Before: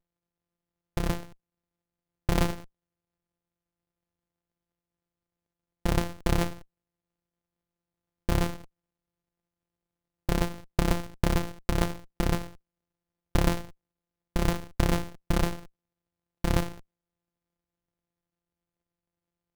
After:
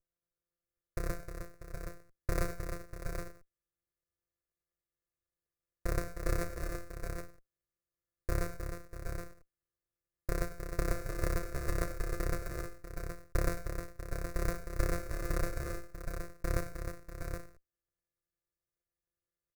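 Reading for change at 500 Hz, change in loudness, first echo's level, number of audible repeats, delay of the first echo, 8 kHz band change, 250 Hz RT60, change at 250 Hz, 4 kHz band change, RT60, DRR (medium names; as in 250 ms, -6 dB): -5.0 dB, -9.0 dB, -16.5 dB, 4, 100 ms, -5.0 dB, no reverb, -11.0 dB, -13.0 dB, no reverb, no reverb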